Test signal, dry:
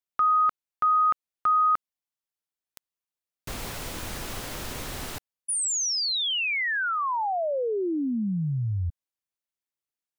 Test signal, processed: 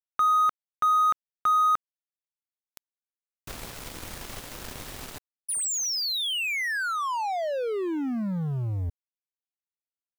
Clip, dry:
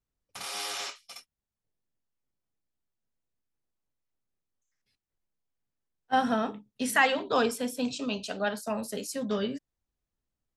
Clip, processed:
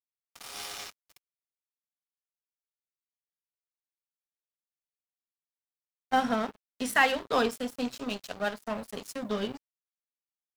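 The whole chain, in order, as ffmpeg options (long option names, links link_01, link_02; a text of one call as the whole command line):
ffmpeg -i in.wav -af "acrusher=bits=10:mix=0:aa=0.000001,aeval=exprs='sgn(val(0))*max(abs(val(0))-0.0133,0)':channel_layout=same,volume=1dB" out.wav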